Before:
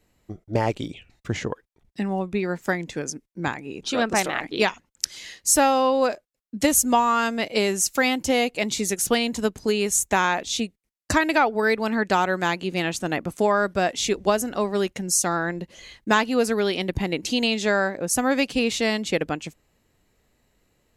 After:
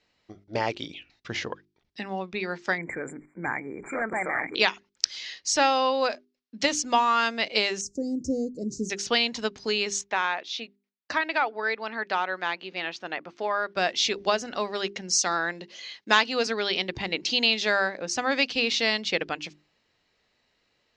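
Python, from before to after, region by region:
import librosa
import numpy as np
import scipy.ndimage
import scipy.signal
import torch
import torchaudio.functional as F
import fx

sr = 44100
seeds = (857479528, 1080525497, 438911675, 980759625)

y = fx.chain(x, sr, fx.overload_stage(gain_db=21.0),
    fx.brickwall_bandstop(low_hz=2400.0, high_hz=7100.0),
    fx.env_flatten(amount_pct=50), at=(2.78, 4.55))
y = fx.chain(y, sr, fx.cheby2_bandstop(low_hz=940.0, high_hz=3600.0, order=4, stop_db=50),
    fx.low_shelf(hz=280.0, db=11.5), at=(7.81, 8.9))
y = fx.chain(y, sr, fx.highpass(hz=540.0, slope=6),
    fx.spacing_loss(db_at_10k=21), at=(10.01, 13.77))
y = fx.chain(y, sr, fx.highpass(hz=170.0, slope=12),
    fx.high_shelf(hz=5100.0, db=6.0), at=(15.13, 16.47))
y = scipy.signal.sosfilt(scipy.signal.butter(6, 5400.0, 'lowpass', fs=sr, output='sos'), y)
y = fx.tilt_eq(y, sr, slope=3.0)
y = fx.hum_notches(y, sr, base_hz=50, count=8)
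y = F.gain(torch.from_numpy(y), -2.0).numpy()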